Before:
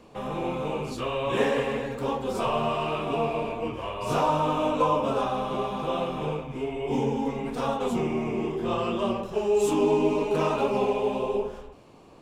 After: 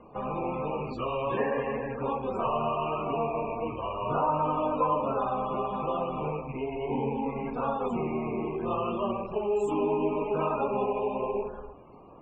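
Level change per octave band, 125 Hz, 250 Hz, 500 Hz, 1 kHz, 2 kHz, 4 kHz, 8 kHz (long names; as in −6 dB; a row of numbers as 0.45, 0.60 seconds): −3.5 dB, −4.0 dB, −3.5 dB, −1.0 dB, −5.5 dB, −11.0 dB, below −15 dB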